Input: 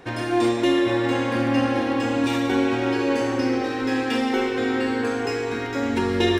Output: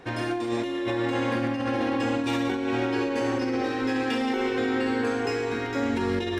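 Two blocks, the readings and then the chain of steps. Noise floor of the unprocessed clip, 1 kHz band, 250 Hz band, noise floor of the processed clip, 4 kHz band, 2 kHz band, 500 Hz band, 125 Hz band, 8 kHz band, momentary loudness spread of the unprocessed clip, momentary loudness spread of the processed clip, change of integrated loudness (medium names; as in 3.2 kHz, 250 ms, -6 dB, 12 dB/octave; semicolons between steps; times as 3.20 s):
-28 dBFS, -3.5 dB, -4.5 dB, -30 dBFS, -5.5 dB, -3.5 dB, -4.0 dB, -3.5 dB, -5.5 dB, 4 LU, 2 LU, -4.0 dB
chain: treble shelf 8.2 kHz -4.5 dB; compressor with a negative ratio -23 dBFS, ratio -1; trim -3 dB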